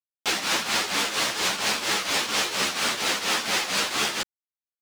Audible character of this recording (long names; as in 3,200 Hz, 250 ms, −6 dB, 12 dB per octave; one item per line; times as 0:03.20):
a quantiser's noise floor 6 bits, dither none
tremolo triangle 4.3 Hz, depth 75%
a shimmering, thickened sound